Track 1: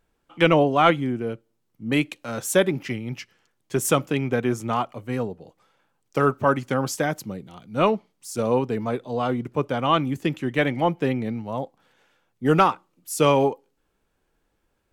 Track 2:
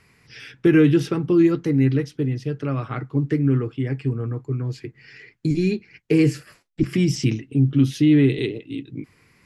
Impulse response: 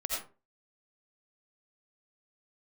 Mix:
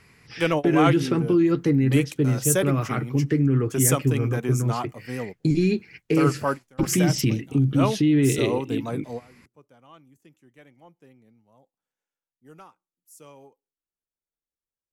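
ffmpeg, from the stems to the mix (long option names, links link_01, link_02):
-filter_complex "[0:a]highshelf=frequency=12000:gain=-6,aexciter=amount=4.5:drive=4.3:freq=5500,volume=-5dB[link_01];[1:a]alimiter=limit=-14.5dB:level=0:latency=1:release=77,volume=2dB,asplit=2[link_02][link_03];[link_03]apad=whole_len=658031[link_04];[link_01][link_04]sidechaingate=range=-25dB:threshold=-46dB:ratio=16:detection=peak[link_05];[link_05][link_02]amix=inputs=2:normalize=0"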